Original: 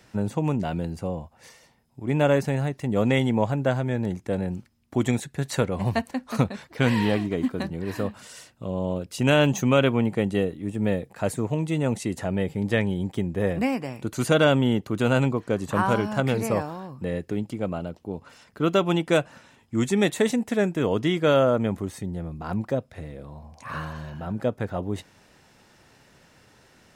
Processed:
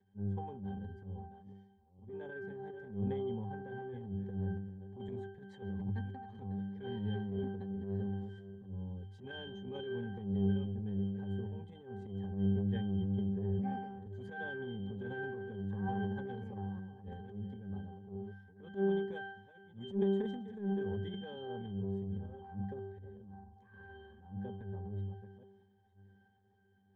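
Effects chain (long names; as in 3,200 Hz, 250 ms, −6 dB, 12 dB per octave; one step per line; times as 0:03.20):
delay that plays each chunk backwards 509 ms, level −13 dB
resonances in every octave G, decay 0.58 s
transient designer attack −11 dB, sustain +7 dB
level +1.5 dB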